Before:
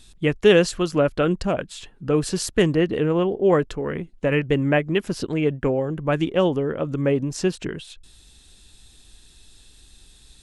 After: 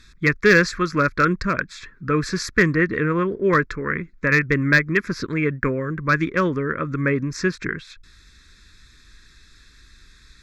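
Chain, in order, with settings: band shelf 1600 Hz +11 dB; one-sided clip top -8.5 dBFS; fixed phaser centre 2900 Hz, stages 6; gain +1.5 dB

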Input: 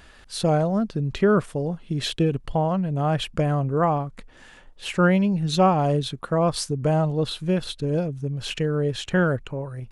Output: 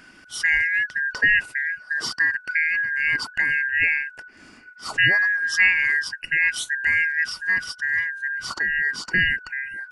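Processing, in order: four-band scrambler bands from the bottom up 2143

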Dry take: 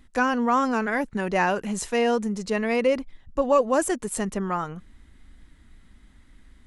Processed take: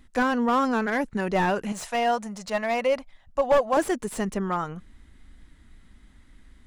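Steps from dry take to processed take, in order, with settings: 1.72–3.77 resonant low shelf 510 Hz -7 dB, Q 3; slew limiter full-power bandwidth 120 Hz

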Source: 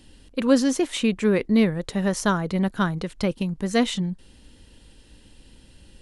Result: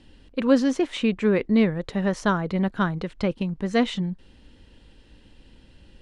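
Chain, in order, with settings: LPF 7100 Hz 12 dB/oct; tone controls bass -1 dB, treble -8 dB

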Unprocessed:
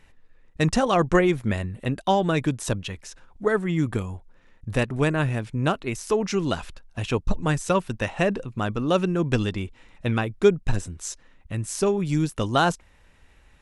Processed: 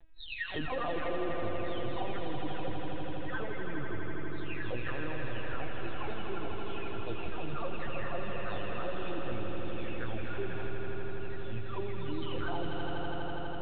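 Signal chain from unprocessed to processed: spectral delay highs early, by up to 0.868 s; limiter -19 dBFS, peak gain reduction 11 dB; LPC vocoder at 8 kHz pitch kept; bell 180 Hz -9.5 dB 0.54 oct; on a send: swelling echo 82 ms, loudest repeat 5, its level -7 dB; on the sum: compressor 2:1, threshold -36 dBFS, peak gain reduction 11.5 dB

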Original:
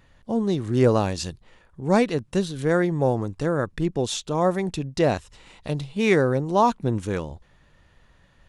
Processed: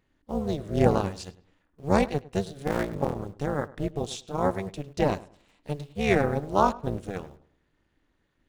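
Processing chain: 2.67–3.16 cycle switcher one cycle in 3, muted; AM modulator 290 Hz, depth 90%; in parallel at -11 dB: bit-crush 7-bit; on the sum: darkening echo 0.103 s, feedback 31%, low-pass 2700 Hz, level -13 dB; upward expander 1.5:1, over -38 dBFS

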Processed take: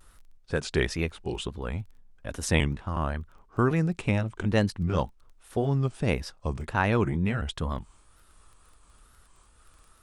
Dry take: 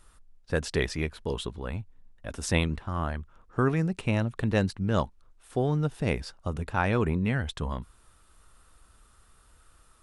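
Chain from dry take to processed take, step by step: trilling pitch shifter -1.5 st, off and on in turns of 0.371 s; crackle 12/s -46 dBFS; wow and flutter 100 cents; gain +1.5 dB

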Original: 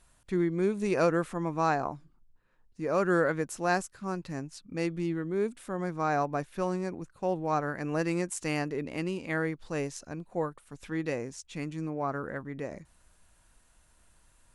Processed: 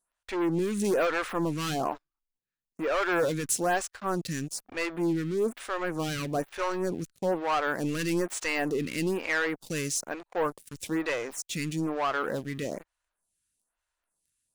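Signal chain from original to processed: tilt +2 dB/oct; sample leveller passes 5; photocell phaser 1.1 Hz; gain -6.5 dB

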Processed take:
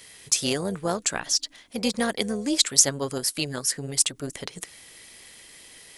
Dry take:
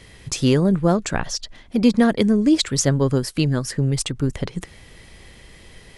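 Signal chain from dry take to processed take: AM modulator 290 Hz, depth 30%; RIAA curve recording; gain -3 dB

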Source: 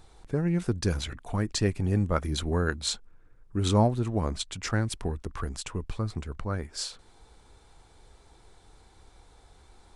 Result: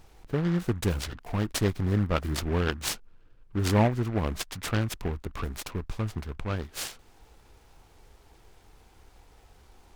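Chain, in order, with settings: noise-modulated delay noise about 1200 Hz, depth 0.078 ms

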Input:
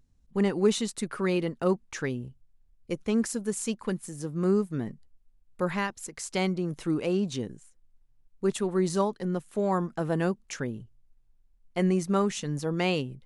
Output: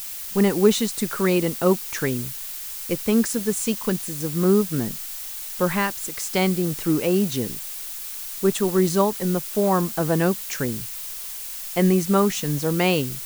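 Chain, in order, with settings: added noise blue -40 dBFS; gain +6.5 dB

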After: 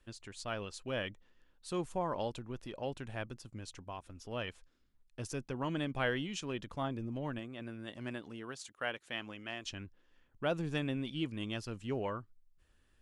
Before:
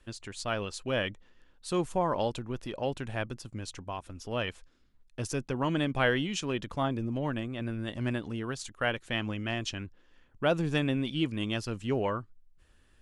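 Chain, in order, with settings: 7.38–9.64 HPF 180 Hz -> 490 Hz 6 dB/oct; gain -7 dB

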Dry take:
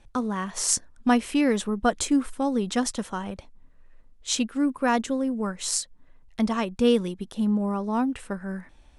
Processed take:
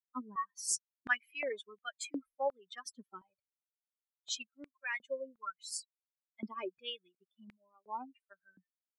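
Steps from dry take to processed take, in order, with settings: per-bin expansion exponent 3; stepped high-pass 2.8 Hz 290–2200 Hz; gain -6.5 dB

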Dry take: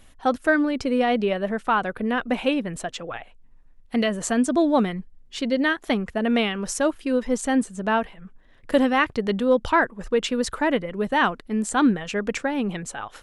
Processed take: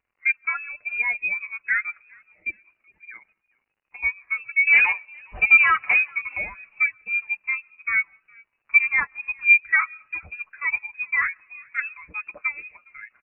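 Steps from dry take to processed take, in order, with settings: HPF 500 Hz 24 dB/oct; tilt -2.5 dB/oct; comb 7.4 ms, depth 62%; 2–3.03 level quantiser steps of 22 dB; 4.67–6.08 overdrive pedal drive 30 dB, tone 1500 Hz, clips at -7 dBFS; crackle 140/s -31 dBFS; inverted band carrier 2900 Hz; frequency-shifting echo 0.41 s, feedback 40%, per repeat +62 Hz, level -19 dB; on a send at -22 dB: reverb RT60 0.90 s, pre-delay 90 ms; on the sum: spectral expander 1.5:1

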